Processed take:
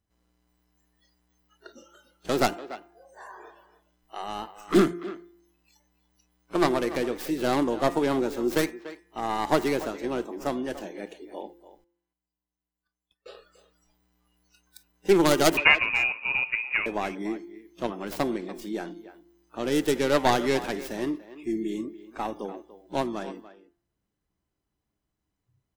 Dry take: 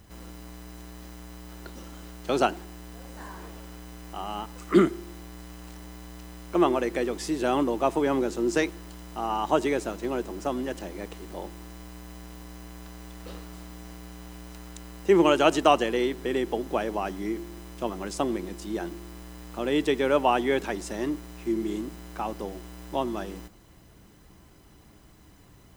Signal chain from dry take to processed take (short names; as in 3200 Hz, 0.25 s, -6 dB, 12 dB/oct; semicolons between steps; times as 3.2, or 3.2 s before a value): tracing distortion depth 0.43 ms; spectral noise reduction 28 dB; de-hum 173 Hz, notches 14; 11.84–13.39 gate -59 dBFS, range -21 dB; 15.57–16.86 inverted band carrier 2800 Hz; speakerphone echo 0.29 s, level -14 dB